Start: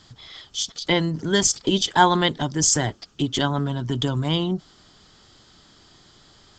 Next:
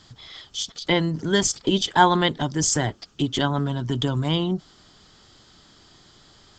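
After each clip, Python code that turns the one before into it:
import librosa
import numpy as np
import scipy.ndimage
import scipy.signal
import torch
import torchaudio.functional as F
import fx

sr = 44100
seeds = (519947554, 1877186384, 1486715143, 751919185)

y = fx.dynamic_eq(x, sr, hz=6100.0, q=0.97, threshold_db=-36.0, ratio=4.0, max_db=-4)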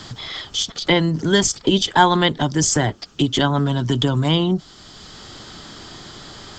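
y = fx.band_squash(x, sr, depth_pct=40)
y = y * librosa.db_to_amplitude(5.0)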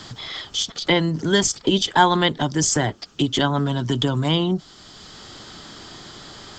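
y = fx.low_shelf(x, sr, hz=120.0, db=-4.0)
y = y * librosa.db_to_amplitude(-1.5)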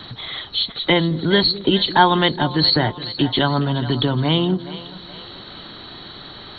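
y = fx.freq_compress(x, sr, knee_hz=3700.0, ratio=4.0)
y = fx.echo_split(y, sr, split_hz=470.0, low_ms=212, high_ms=420, feedback_pct=52, wet_db=-14.5)
y = y * librosa.db_to_amplitude(2.0)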